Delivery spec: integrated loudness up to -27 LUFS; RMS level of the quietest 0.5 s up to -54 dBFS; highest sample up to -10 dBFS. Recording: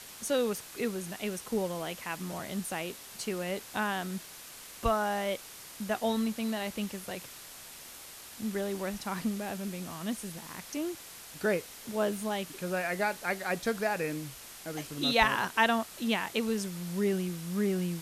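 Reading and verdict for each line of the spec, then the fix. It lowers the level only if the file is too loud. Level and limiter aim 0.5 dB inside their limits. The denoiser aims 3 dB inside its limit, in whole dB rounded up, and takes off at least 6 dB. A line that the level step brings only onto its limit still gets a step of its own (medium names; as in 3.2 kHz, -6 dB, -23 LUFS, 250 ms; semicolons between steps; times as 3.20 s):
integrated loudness -32.5 LUFS: pass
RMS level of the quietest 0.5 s -48 dBFS: fail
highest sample -9.0 dBFS: fail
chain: noise reduction 9 dB, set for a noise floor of -48 dBFS; peak limiter -10.5 dBFS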